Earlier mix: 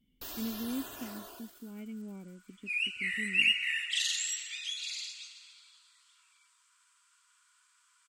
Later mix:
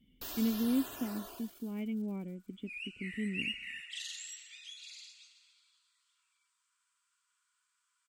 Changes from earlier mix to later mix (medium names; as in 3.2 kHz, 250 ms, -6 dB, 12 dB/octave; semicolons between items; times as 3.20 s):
speech +6.0 dB; second sound -11.5 dB